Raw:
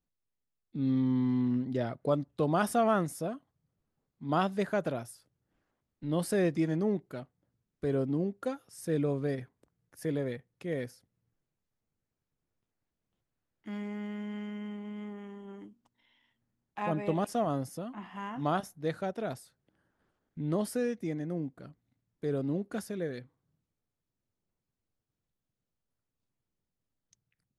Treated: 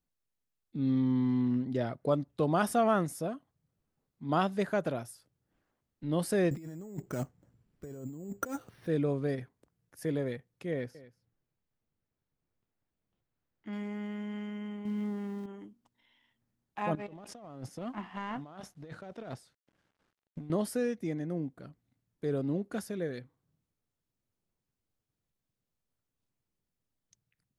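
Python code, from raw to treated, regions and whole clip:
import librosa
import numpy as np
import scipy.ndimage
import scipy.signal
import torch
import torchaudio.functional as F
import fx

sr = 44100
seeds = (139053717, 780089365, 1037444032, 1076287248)

y = fx.chain(x, sr, fx.low_shelf(hz=220.0, db=4.5),
    fx.over_compress(threshold_db=-40.0, ratio=-1.0),
    fx.resample_bad(factor=6, down='filtered', up='hold'), at=(6.51, 8.87))
y = fx.chain(y, sr, fx.peak_eq(hz=10000.0, db=-11.0, octaves=1.5),
    fx.echo_single(ms=236, db=-18.0), at=(10.71, 13.73))
y = fx.chain(y, sr, fx.zero_step(step_db=-49.5),
    fx.highpass(hz=73.0, slope=12),
    fx.low_shelf(hz=260.0, db=10.0), at=(14.85, 15.46))
y = fx.chain(y, sr, fx.law_mismatch(coded='A'),
    fx.over_compress(threshold_db=-43.0, ratio=-1.0),
    fx.air_absorb(metres=59.0), at=(16.95, 20.5))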